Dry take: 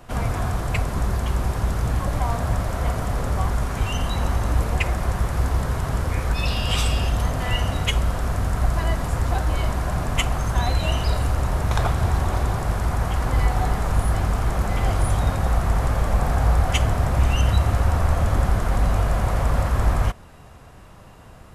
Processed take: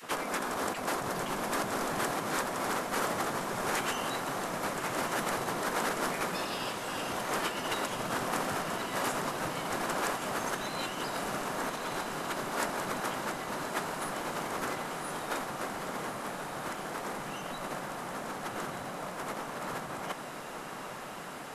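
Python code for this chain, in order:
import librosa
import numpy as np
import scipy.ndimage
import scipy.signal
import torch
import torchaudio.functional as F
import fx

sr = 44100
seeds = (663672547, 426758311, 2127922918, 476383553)

y = fx.spec_gate(x, sr, threshold_db=-15, keep='weak')
y = fx.over_compress(y, sr, threshold_db=-35.0, ratio=-0.5)
y = fx.echo_diffused(y, sr, ms=1215, feedback_pct=76, wet_db=-7)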